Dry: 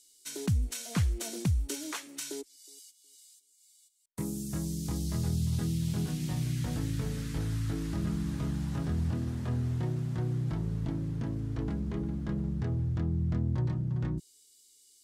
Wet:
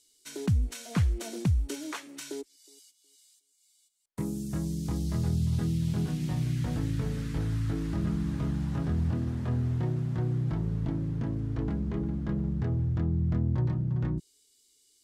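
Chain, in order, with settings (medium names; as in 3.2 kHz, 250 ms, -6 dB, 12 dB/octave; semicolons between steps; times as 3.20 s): treble shelf 3.9 kHz -9 dB; trim +2.5 dB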